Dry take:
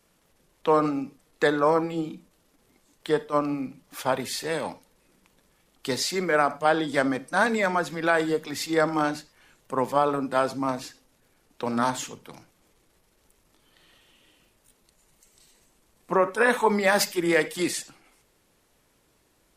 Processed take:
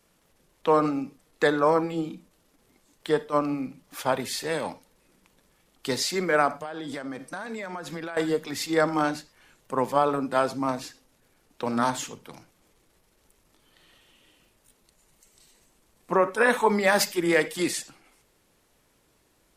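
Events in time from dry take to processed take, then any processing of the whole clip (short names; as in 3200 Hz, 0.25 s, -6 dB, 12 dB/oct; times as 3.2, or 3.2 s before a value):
6.6–8.17 compressor 20:1, threshold -30 dBFS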